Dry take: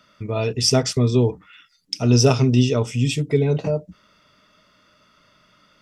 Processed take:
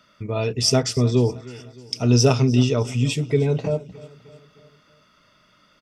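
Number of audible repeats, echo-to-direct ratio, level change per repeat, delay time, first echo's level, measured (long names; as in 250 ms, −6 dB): 3, −18.5 dB, −5.5 dB, 307 ms, −20.0 dB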